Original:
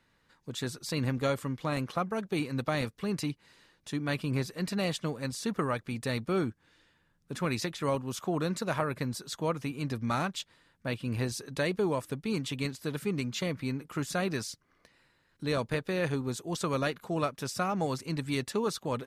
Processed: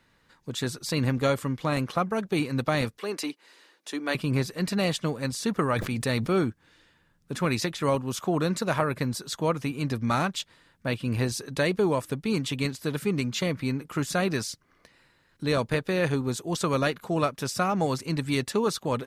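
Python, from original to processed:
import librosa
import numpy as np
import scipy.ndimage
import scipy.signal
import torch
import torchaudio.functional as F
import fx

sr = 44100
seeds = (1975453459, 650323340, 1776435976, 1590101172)

y = fx.highpass(x, sr, hz=300.0, slope=24, at=(2.97, 4.15))
y = fx.sustainer(y, sr, db_per_s=46.0, at=(5.75, 6.33), fade=0.02)
y = F.gain(torch.from_numpy(y), 5.0).numpy()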